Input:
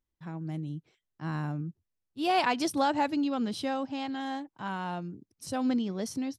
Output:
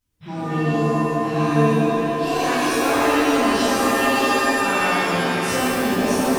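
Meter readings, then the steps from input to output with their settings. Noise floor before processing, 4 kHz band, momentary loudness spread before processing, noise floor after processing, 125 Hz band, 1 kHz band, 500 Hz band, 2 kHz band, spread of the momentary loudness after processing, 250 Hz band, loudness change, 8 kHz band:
-85 dBFS, +12.5 dB, 14 LU, -29 dBFS, +12.5 dB, +11.0 dB, +16.0 dB, +17.0 dB, 4 LU, +10.5 dB, +12.5 dB, +16.5 dB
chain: coarse spectral quantiser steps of 30 dB; compression, threshold -34 dBFS, peak gain reduction 11.5 dB; on a send: delay with an opening low-pass 206 ms, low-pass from 400 Hz, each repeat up 2 oct, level -3 dB; on the sum: one-sided clip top -33.5 dBFS; pitch-shifted reverb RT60 1.5 s, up +7 st, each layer -2 dB, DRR -11.5 dB; trim +3 dB

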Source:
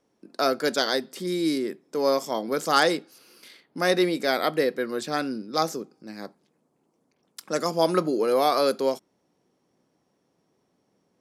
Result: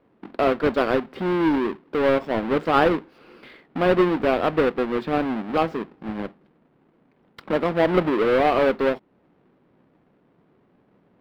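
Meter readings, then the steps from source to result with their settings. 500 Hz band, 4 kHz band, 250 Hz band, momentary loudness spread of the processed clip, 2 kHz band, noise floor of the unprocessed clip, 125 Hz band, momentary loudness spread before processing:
+3.5 dB, -6.0 dB, +5.0 dB, 13 LU, +2.0 dB, -72 dBFS, +7.0 dB, 15 LU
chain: square wave that keeps the level; distance through air 450 m; in parallel at +3 dB: compression, threshold -33 dBFS, peak gain reduction 19 dB; on the sum: trim -1.5 dB

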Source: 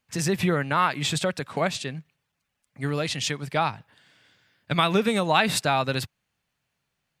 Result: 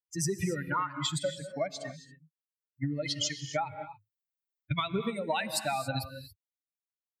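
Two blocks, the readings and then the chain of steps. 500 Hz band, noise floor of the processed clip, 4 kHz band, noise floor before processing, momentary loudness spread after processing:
-8.0 dB, under -85 dBFS, -7.0 dB, -80 dBFS, 13 LU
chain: expander on every frequency bin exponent 3; compression 10:1, threshold -36 dBFS, peak gain reduction 16.5 dB; gated-style reverb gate 300 ms rising, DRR 10 dB; trim +8 dB

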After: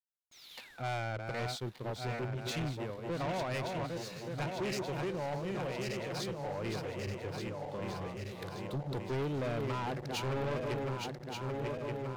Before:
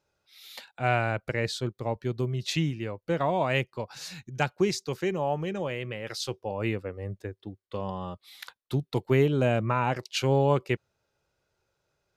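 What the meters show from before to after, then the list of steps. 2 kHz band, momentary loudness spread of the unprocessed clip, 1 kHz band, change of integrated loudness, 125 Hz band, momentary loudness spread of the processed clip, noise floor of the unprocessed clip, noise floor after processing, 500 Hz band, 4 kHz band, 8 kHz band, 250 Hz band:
-8.0 dB, 15 LU, -7.5 dB, -8.5 dB, -8.0 dB, 6 LU, -83 dBFS, -55 dBFS, -8.0 dB, -6.5 dB, -6.5 dB, -7.5 dB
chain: backward echo that repeats 589 ms, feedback 77%, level -6 dB; saturation -26 dBFS, distortion -8 dB; painted sound fall, 0.31–0.89 s, 1–6.9 kHz -49 dBFS; hysteresis with a dead band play -43 dBFS; trim -5 dB

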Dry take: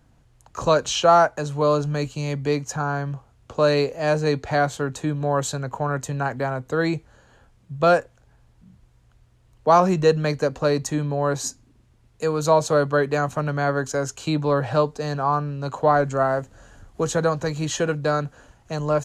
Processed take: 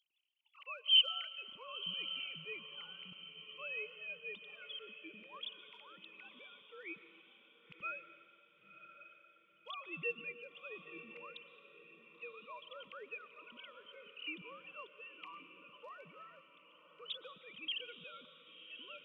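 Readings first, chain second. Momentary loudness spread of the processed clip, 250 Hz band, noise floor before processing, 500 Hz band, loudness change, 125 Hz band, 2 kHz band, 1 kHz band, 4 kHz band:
16 LU, -34.0 dB, -58 dBFS, -32.5 dB, -17.5 dB, under -40 dB, -16.0 dB, -30.5 dB, -2.0 dB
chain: formants replaced by sine waves; inverse Chebyshev high-pass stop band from 1.8 kHz, stop band 40 dB; on a send: echo that smears into a reverb 1062 ms, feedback 41%, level -11.5 dB; on the sum: plate-style reverb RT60 1.8 s, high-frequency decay 0.9×, pre-delay 105 ms, DRR 13.5 dB; trim +13.5 dB

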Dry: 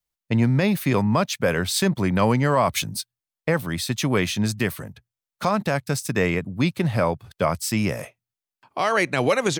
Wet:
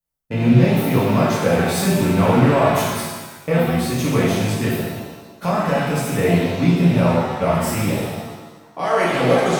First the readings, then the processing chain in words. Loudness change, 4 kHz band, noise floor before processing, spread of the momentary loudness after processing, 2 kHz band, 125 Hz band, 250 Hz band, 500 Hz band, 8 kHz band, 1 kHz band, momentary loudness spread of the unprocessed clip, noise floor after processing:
+4.5 dB, +0.5 dB, under -85 dBFS, 13 LU, +1.5 dB, +5.5 dB, +5.5 dB, +5.5 dB, +0.5 dB, +4.5 dB, 9 LU, -45 dBFS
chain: rattle on loud lows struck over -28 dBFS, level -20 dBFS; peaking EQ 3.7 kHz -8 dB 2.5 oct; pitch-shifted reverb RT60 1.2 s, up +7 st, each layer -8 dB, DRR -7 dB; trim -3 dB

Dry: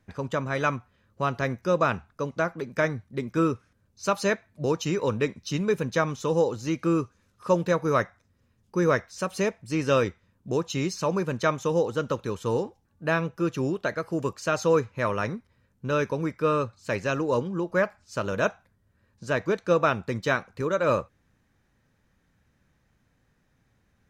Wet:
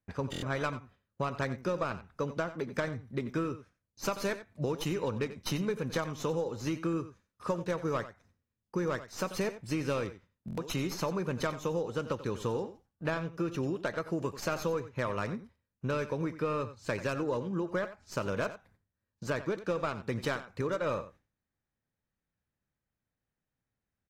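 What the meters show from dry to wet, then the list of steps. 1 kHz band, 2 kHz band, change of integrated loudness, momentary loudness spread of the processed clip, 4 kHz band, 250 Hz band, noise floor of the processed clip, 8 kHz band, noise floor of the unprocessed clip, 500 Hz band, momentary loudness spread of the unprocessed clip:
-8.5 dB, -8.5 dB, -7.5 dB, 5 LU, -4.5 dB, -6.5 dB, under -85 dBFS, -5.5 dB, -69 dBFS, -8.0 dB, 7 LU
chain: tracing distortion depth 0.089 ms; gate with hold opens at -52 dBFS; treble shelf 6.5 kHz -4 dB; compression 8:1, threshold -29 dBFS, peak gain reduction 13.5 dB; delay 90 ms -14 dB; buffer glitch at 0.31/10.46 s, samples 1024, times 4; AAC 48 kbps 44.1 kHz

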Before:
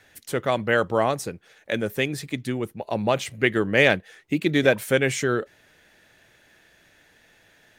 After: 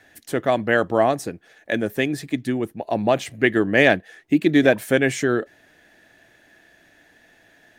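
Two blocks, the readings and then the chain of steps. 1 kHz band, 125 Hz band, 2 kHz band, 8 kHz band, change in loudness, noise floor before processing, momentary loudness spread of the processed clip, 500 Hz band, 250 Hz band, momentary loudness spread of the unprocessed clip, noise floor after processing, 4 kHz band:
+3.0 dB, 0.0 dB, +2.0 dB, -1.0 dB, +3.0 dB, -59 dBFS, 10 LU, +2.5 dB, +5.5 dB, 11 LU, -56 dBFS, -1.0 dB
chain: small resonant body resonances 290/680/1700 Hz, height 8 dB, ringing for 20 ms; trim -1 dB

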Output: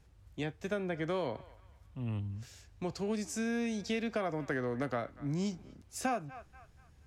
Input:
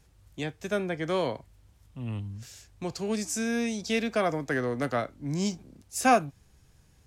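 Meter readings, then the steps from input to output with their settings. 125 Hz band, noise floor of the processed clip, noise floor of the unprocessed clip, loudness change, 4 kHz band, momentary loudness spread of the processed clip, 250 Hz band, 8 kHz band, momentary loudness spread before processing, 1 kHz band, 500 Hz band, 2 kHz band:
-3.5 dB, -62 dBFS, -61 dBFS, -7.0 dB, -8.5 dB, 12 LU, -5.0 dB, -10.0 dB, 17 LU, -10.0 dB, -6.5 dB, -8.0 dB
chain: peaking EQ 73 Hz +7 dB 0.29 oct; on a send: band-passed feedback delay 240 ms, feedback 41%, band-pass 1.6 kHz, level -21.5 dB; on the sum: compression 6:1, threshold -28 dBFS, peak gain reduction 11.5 dB; treble shelf 4.6 kHz -9 dB; trim -2 dB

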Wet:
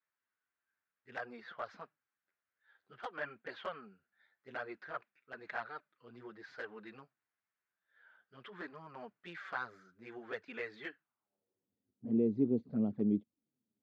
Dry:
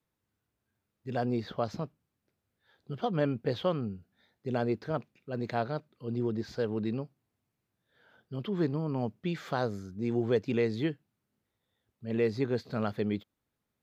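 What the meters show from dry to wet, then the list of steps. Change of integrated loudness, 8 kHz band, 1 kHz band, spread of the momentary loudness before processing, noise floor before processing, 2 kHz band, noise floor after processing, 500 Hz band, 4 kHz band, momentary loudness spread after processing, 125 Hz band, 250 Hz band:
-6.5 dB, no reading, -8.0 dB, 11 LU, -84 dBFS, -1.0 dB, under -85 dBFS, -11.5 dB, -11.0 dB, 21 LU, -14.5 dB, -5.0 dB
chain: band-pass sweep 1.6 kHz -> 250 Hz, 10.99–11.70 s; touch-sensitive flanger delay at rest 10.9 ms, full sweep at -32.5 dBFS; trim +4.5 dB

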